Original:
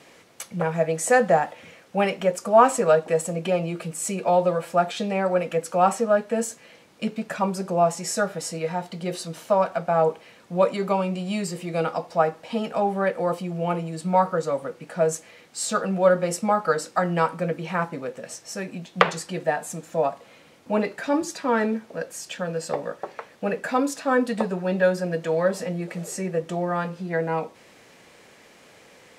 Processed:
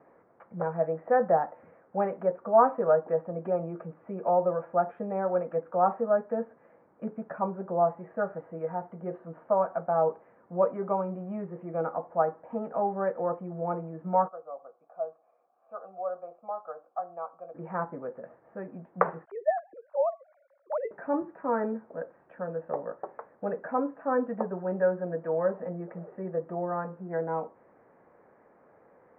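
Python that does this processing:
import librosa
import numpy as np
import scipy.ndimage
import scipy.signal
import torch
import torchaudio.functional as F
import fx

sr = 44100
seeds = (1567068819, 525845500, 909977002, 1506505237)

y = fx.vowel_filter(x, sr, vowel='a', at=(14.27, 17.54), fade=0.02)
y = fx.sine_speech(y, sr, at=(19.25, 20.91))
y = scipy.signal.sosfilt(scipy.signal.bessel(8, 880.0, 'lowpass', norm='mag', fs=sr, output='sos'), y)
y = fx.low_shelf(y, sr, hz=390.0, db=-10.5)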